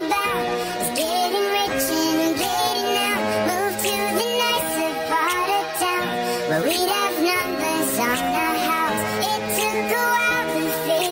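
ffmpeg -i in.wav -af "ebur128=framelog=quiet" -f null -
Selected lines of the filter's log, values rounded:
Integrated loudness:
  I:         -21.0 LUFS
  Threshold: -31.0 LUFS
Loudness range:
  LRA:         0.6 LU
  Threshold: -40.9 LUFS
  LRA low:   -21.2 LUFS
  LRA high:  -20.6 LUFS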